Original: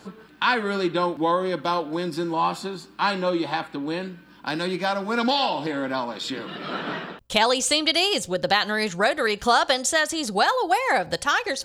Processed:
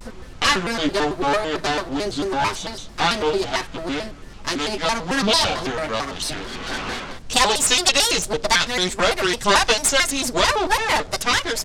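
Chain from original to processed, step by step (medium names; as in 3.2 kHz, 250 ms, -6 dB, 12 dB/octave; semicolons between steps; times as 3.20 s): comb filter that takes the minimum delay 9.1 ms; tempo 1×; added noise brown -40 dBFS; Chebyshev low-pass 7.3 kHz, order 2; treble shelf 5.6 kHz +10 dB; vibrato with a chosen wave square 4.5 Hz, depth 250 cents; trim +4 dB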